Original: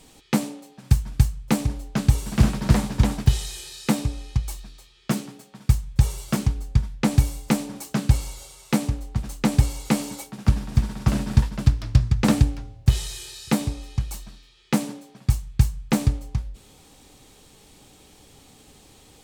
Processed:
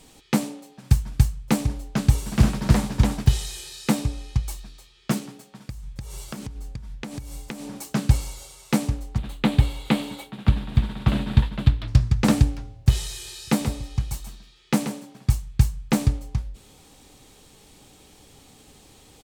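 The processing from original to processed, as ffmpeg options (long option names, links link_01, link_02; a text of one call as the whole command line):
ffmpeg -i in.wav -filter_complex "[0:a]asettb=1/sr,asplit=3[link_01][link_02][link_03];[link_01]atrim=end=5.184[link_04];[link_02]atrim=start=5.18:end=7.76,asetpts=PTS-STARTPTS,afade=type=in:duration=0.004:curve=qsin,afade=type=out:start_time=2.576:duration=0.004:curve=qsin,acompressor=threshold=-30dB:ratio=10:attack=3.2:release=140:knee=1:detection=peak[link_05];[link_03]atrim=start=7.756[link_06];[link_04][link_05]acrossfade=duration=0.004:curve1=hsin:curve2=qsin[link_07];[link_07][link_06]acrossfade=duration=0.004:curve1=qsin:curve2=hsin,asettb=1/sr,asplit=3[link_08][link_09][link_10];[link_08]atrim=end=9.184[link_11];[link_09]atrim=start=9.18:end=11.88,asetpts=PTS-STARTPTS,afade=type=in:duration=0.004:curve=qsin,afade=type=out:start_time=2.696:duration=0.004:curve=qsin,highshelf=frequency=4500:width_type=q:width=3:gain=-7.5[link_12];[link_10]atrim=start=11.876[link_13];[link_11][link_12]acrossfade=duration=0.004:curve1=hsin:curve2=qsin[link_14];[link_14][link_13]acrossfade=duration=0.004:curve1=qsin:curve2=hsin,asplit=3[link_15][link_16][link_17];[link_15]afade=type=out:start_time=13.24:duration=0.02[link_18];[link_16]aecho=1:1:133:0.335,afade=type=in:start_time=13.24:duration=0.02,afade=type=out:start_time=15.31:duration=0.02[link_19];[link_17]afade=type=in:start_time=15.31:duration=0.02[link_20];[link_18][link_19][link_20]amix=inputs=3:normalize=0" out.wav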